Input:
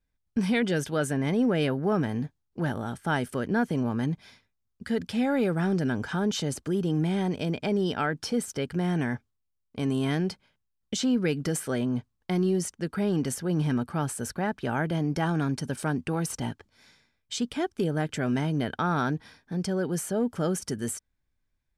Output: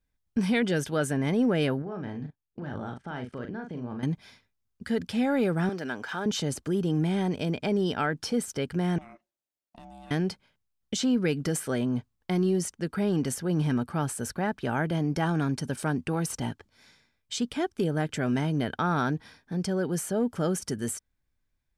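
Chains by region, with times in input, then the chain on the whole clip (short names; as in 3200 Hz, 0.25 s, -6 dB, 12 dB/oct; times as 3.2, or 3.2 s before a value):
1.82–4.03 air absorption 130 m + level quantiser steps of 18 dB + doubler 40 ms -6 dB
5.69–6.26 median filter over 5 samples + weighting filter A
8.98–10.11 HPF 130 Hz + compressor, threshold -43 dBFS + ring modulator 460 Hz
whole clip: dry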